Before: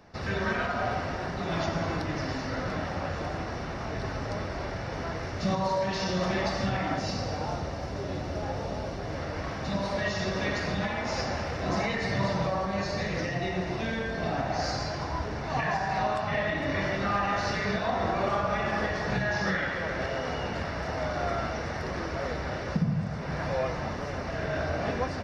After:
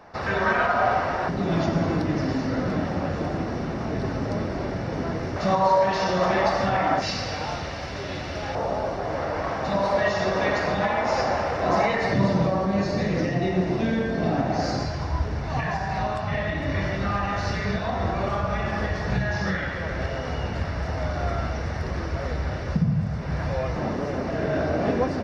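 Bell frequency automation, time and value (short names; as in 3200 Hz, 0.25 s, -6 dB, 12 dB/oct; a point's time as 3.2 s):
bell +10.5 dB 2.4 oct
940 Hz
from 1.29 s 240 Hz
from 5.36 s 860 Hz
from 7.02 s 2800 Hz
from 8.55 s 780 Hz
from 12.13 s 250 Hz
from 14.85 s 64 Hz
from 23.76 s 300 Hz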